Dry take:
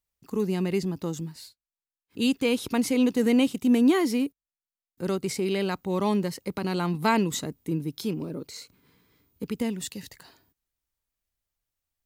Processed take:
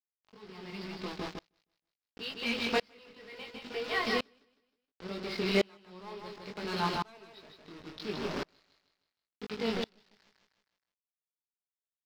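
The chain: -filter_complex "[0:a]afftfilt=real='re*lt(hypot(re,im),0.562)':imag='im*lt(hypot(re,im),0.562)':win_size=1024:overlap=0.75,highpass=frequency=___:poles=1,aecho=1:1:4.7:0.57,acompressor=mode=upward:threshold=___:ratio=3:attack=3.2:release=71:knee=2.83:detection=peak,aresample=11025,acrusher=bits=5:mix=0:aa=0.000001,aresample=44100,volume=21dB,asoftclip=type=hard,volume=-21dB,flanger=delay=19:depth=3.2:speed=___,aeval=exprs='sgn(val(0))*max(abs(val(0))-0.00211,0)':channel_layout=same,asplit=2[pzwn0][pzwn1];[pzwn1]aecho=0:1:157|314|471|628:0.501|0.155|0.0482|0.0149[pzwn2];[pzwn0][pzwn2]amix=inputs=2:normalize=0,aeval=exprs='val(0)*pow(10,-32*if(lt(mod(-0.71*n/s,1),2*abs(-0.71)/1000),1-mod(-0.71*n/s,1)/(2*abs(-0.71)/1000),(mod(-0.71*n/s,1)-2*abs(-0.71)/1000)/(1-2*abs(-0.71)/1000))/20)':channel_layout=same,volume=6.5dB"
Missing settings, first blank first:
450, -35dB, 2.1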